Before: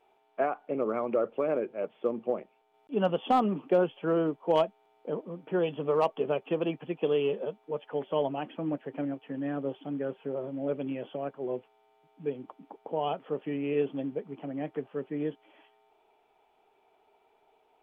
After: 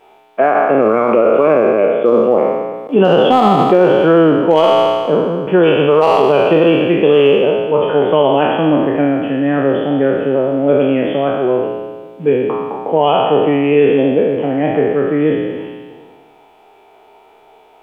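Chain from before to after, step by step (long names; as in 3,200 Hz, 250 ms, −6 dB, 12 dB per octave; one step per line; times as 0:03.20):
peak hold with a decay on every bin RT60 1.62 s
boost into a limiter +18.5 dB
level −1 dB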